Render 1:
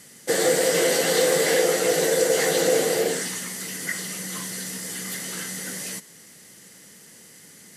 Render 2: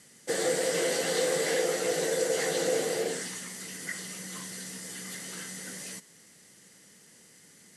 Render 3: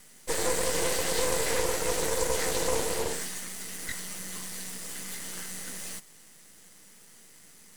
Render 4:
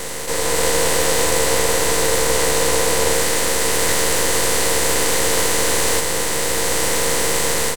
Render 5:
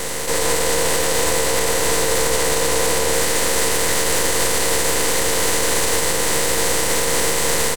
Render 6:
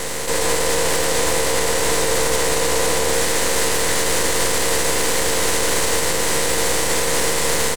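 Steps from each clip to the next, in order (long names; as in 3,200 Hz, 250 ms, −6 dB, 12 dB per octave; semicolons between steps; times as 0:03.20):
low-pass filter 11,000 Hz 24 dB per octave; level −7.5 dB
high-shelf EQ 11,000 Hz +11 dB; half-wave rectification; level +3.5 dB
compressor on every frequency bin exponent 0.2; double-tracking delay 13 ms −4.5 dB; automatic gain control; level −1 dB
brickwall limiter −8.5 dBFS, peak gain reduction 6 dB; level +2.5 dB
highs frequency-modulated by the lows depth 0.18 ms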